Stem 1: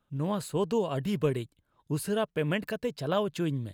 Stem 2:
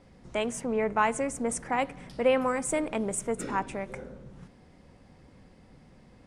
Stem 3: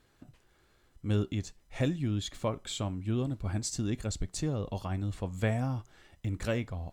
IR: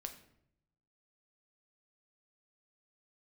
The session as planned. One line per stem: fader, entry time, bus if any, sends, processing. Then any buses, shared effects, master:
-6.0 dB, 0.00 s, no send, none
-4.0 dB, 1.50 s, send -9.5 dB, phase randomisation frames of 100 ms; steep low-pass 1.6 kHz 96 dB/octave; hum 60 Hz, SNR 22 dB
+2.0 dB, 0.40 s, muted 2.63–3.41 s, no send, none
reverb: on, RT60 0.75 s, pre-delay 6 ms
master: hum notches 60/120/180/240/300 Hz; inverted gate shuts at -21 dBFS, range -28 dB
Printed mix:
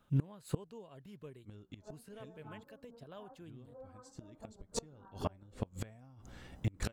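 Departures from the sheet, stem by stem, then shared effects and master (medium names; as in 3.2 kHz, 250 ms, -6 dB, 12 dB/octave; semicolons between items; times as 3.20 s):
stem 1 -6.0 dB -> +5.0 dB; master: missing hum notches 60/120/180/240/300 Hz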